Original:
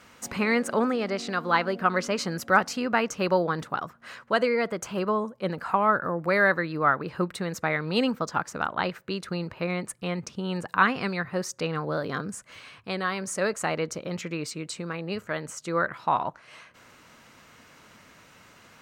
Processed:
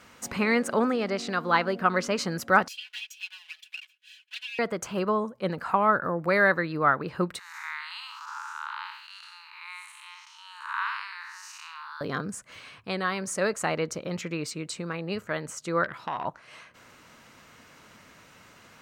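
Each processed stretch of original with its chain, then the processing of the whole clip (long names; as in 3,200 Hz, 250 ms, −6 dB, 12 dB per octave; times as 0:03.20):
0:02.68–0:04.59: lower of the sound and its delayed copy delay 1.2 ms + four-pole ladder high-pass 2,600 Hz, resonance 65% + comb filter 4.7 ms, depth 83%
0:07.39–0:12.01: spectrum smeared in time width 225 ms + Chebyshev high-pass filter 870 Hz, order 8
0:15.84–0:16.25: downward compressor, threshold −25 dBFS + saturating transformer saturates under 1,500 Hz
whole clip: no processing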